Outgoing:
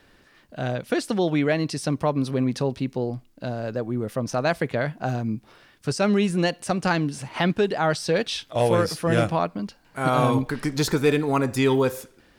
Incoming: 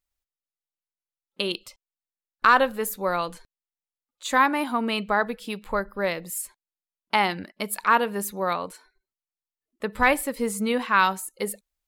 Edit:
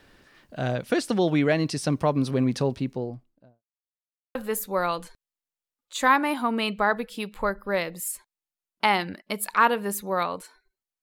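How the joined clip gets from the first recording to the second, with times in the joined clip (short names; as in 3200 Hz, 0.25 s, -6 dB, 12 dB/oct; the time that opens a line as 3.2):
outgoing
2.57–3.63 studio fade out
3.63–4.35 mute
4.35 switch to incoming from 2.65 s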